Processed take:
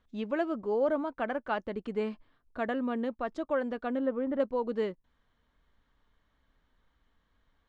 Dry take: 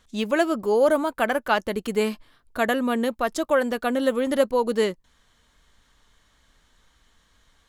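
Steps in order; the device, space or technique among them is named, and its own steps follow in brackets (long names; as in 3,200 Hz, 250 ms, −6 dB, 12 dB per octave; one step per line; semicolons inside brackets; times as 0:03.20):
phone in a pocket (low-pass filter 4,000 Hz 12 dB per octave; parametric band 270 Hz +3 dB 0.23 octaves; high-shelf EQ 2,200 Hz −9.5 dB)
0:03.99–0:04.40: low-pass filter 1,800 Hz 12 dB per octave
level −8.5 dB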